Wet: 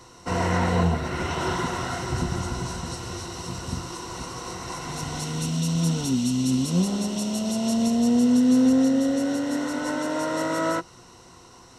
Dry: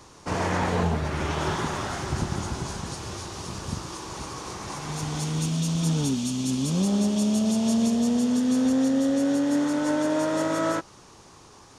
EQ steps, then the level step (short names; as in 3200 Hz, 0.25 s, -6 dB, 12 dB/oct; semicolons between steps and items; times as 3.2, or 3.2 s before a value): ripple EQ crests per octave 2, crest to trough 10 dB; 0.0 dB